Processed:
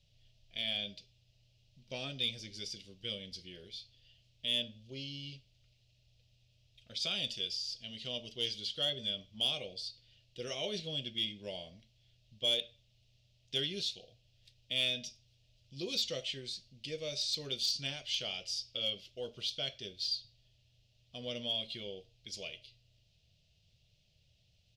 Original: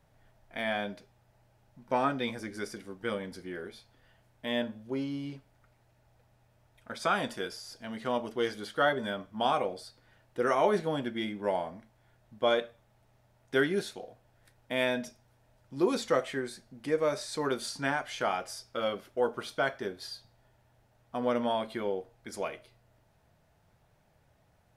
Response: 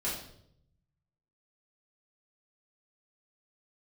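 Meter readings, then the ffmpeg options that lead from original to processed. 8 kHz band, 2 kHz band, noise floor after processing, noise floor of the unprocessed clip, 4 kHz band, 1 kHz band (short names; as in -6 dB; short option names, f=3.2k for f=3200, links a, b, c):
0.0 dB, -10.5 dB, -71 dBFS, -67 dBFS, +7.5 dB, -23.0 dB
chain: -filter_complex "[0:a]firequalizer=gain_entry='entry(110,0);entry(260,-14);entry(580,-10);entry(890,-26);entry(1600,-21);entry(2800,10);entry(4800,10);entry(9600,-11)':delay=0.05:min_phase=1,asplit=2[a][b];[b]aeval=exprs='0.0562*(abs(mod(val(0)/0.0562+3,4)-2)-1)':c=same,volume=-9dB[c];[a][c]amix=inputs=2:normalize=0,volume=-4.5dB"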